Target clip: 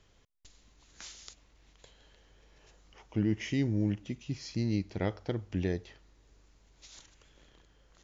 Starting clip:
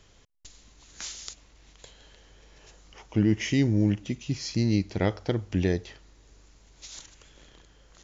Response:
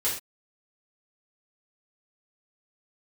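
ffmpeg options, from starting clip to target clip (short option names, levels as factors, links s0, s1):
-af "highshelf=f=6500:g=-8,volume=0.473"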